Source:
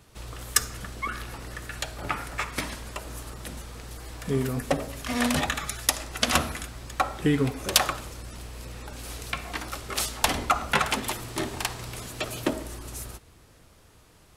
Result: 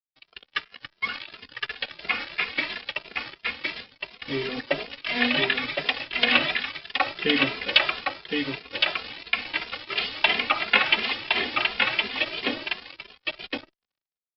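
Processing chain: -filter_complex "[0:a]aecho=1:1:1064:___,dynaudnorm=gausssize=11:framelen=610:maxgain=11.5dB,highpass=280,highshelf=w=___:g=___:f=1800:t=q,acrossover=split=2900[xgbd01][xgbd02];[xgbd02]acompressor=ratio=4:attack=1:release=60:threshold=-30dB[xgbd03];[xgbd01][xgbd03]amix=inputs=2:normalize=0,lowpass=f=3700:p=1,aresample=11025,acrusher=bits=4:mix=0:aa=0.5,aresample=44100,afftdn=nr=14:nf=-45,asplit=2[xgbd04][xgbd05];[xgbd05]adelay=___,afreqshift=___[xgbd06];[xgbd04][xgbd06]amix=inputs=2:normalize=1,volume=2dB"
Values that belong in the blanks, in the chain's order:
0.631, 1.5, 12.5, 2.5, 2.9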